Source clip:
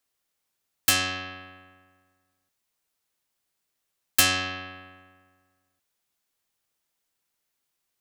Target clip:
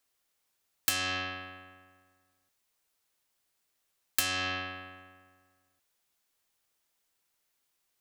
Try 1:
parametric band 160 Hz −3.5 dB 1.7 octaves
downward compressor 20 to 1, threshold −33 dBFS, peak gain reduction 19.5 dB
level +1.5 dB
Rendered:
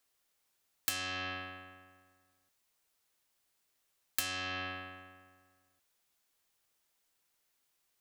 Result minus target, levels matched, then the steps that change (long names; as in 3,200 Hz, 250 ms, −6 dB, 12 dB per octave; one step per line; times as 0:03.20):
downward compressor: peak gain reduction +6 dB
change: downward compressor 20 to 1, threshold −26.5 dBFS, peak gain reduction 13.5 dB